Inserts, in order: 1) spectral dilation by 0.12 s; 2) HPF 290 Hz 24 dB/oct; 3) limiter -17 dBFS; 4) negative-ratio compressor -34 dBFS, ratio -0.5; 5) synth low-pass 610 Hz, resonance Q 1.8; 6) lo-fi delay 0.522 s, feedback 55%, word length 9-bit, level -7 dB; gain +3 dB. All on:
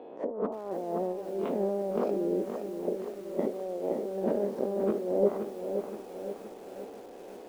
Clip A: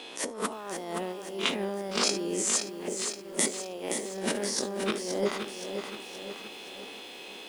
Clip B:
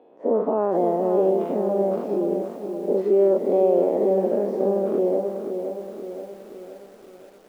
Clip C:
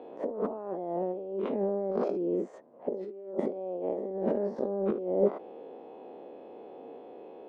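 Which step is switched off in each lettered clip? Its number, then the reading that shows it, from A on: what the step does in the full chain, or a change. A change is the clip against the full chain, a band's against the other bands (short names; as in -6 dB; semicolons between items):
5, 1 kHz band +3.5 dB; 4, crest factor change -4.5 dB; 6, momentary loudness spread change +4 LU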